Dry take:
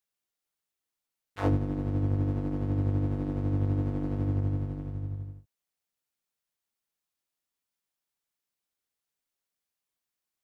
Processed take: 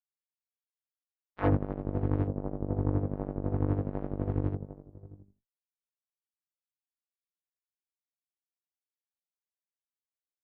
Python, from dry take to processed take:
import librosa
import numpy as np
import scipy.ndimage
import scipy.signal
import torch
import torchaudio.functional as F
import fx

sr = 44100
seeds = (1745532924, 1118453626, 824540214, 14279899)

y = fx.cheby_harmonics(x, sr, harmonics=(7, 8), levels_db=(-17, -29), full_scale_db=-14.0)
y = fx.filter_lfo_lowpass(y, sr, shape='saw_up', hz=0.44, low_hz=900.0, high_hz=2500.0, q=0.8)